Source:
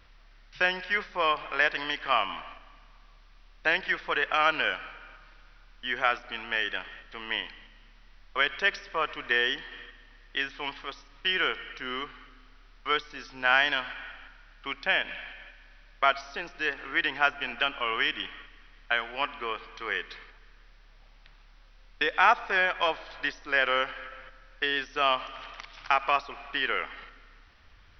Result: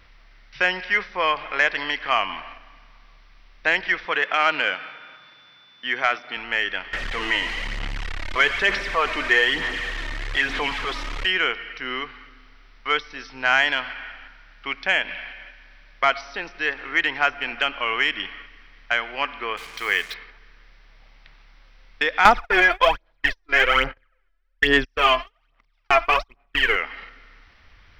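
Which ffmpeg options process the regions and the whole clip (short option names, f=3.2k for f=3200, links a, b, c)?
-filter_complex "[0:a]asettb=1/sr,asplit=3[a][b][c];[a]atrim=end=4.054[d];[b]atrim=start=4.05:end=6.37,asetpts=PTS-STARTPTS,afade=t=in:d=0.004:c=qsin,afade=t=out:st=2.316:d=0.004:c=qsin,highpass=f=110:w=0.5412,highpass=f=110:w=1.3066,aeval=exprs='val(0)+0.00158*sin(2*PI*3500*n/s)':c=same[e];[c]atrim=start=6.366[f];[d][e]acrossfade=d=0.004:c1=hsin:c2=qsin[g];[g][f]acrossfade=d=0.004:c1=qsin:c2=hsin,asettb=1/sr,asplit=3[h][i][j];[h]atrim=end=6.934[k];[i]atrim=start=6.93:end=11.26,asetpts=PTS-STARTPTS,afade=t=in:d=0.004:c=qsin,afade=t=out:st=4.326:d=0.004:c=qsin,aeval=exprs='val(0)+0.5*0.0316*sgn(val(0))':c=same,lowpass=4.1k,aphaser=in_gain=1:out_gain=1:delay=3.3:decay=0.39:speed=1.1:type=sinusoidal[l];[j]atrim=start=11.256[m];[k][l]acrossfade=d=0.004:c1=hsin:c2=qsin[n];[n][m]acrossfade=d=0.004:c1=qsin:c2=hsin,asettb=1/sr,asplit=3[o][p][q];[o]atrim=end=19.574[r];[p]atrim=start=19.57:end=20.14,asetpts=PTS-STARTPTS,afade=t=in:d=0.004:c=qsin,afade=t=out:st=0.566:d=0.004:c=qsin,highshelf=f=2.5k:g=10,acrusher=bits=6:mix=0:aa=0.5[s];[q]atrim=start=20.136[t];[r][s]acrossfade=d=0.004:c1=hsin:c2=qsin[u];[u][t]acrossfade=d=0.004:c1=qsin:c2=hsin,asettb=1/sr,asplit=3[v][w][x];[v]atrim=end=22.254[y];[w]atrim=start=22.25:end=26.76,asetpts=PTS-STARTPTS,afade=t=in:d=0.004:c=qsin,afade=t=out:st=4.506:d=0.004:c=qsin,agate=range=-35dB:threshold=-37dB:ratio=16:release=100:detection=peak,lowshelf=f=210:g=10,aphaser=in_gain=1:out_gain=1:delay=3:decay=0.72:speed=1.2:type=sinusoidal[z];[x]atrim=start=26.756[aa];[y][z]acrossfade=d=0.004:c1=hsin:c2=qsin[ab];[ab][aa]acrossfade=d=0.004:c1=qsin:c2=hsin,equalizer=f=2.1k:w=5.1:g=5.5,acontrast=70,volume=-2.5dB"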